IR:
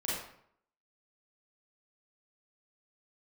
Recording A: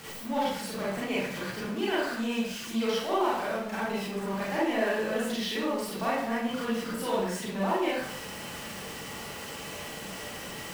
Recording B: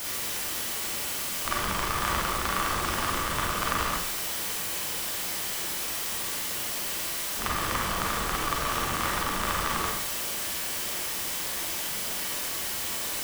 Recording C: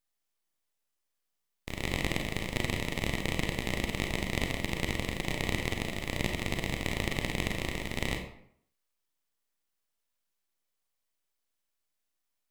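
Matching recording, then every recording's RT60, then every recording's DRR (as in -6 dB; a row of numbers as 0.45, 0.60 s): A; 0.65, 0.65, 0.65 s; -8.0, -3.5, 3.5 dB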